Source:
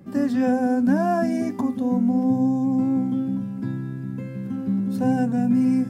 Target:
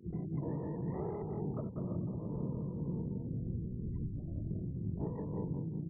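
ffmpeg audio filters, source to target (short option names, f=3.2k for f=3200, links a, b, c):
-filter_complex "[0:a]afftfilt=real='hypot(re,im)*cos(2*PI*random(0))':imag='hypot(re,im)*sin(2*PI*random(1))':win_size=512:overlap=0.75,asetrate=26222,aresample=44100,atempo=1.68179,acrossover=split=160|1000|3600[a][b][c][d];[a]acompressor=threshold=-36dB:ratio=4[e];[b]acompressor=threshold=-30dB:ratio=4[f];[c]acompressor=threshold=-55dB:ratio=4[g];[e][f][g][d]amix=inputs=4:normalize=0,equalizer=f=570:t=o:w=0.64:g=3.5,asplit=2[h][i];[i]aecho=0:1:191|382|573|764:0.596|0.203|0.0689|0.0234[j];[h][j]amix=inputs=2:normalize=0,afftfilt=real='re*gte(hypot(re,im),0.0282)':imag='im*gte(hypot(re,im),0.0282)':win_size=1024:overlap=0.75,acompressor=threshold=-34dB:ratio=20,tremolo=f=2:d=0.3,asplit=2[k][l];[l]asetrate=88200,aresample=44100,atempo=0.5,volume=-9dB[m];[k][m]amix=inputs=2:normalize=0,volume=1dB"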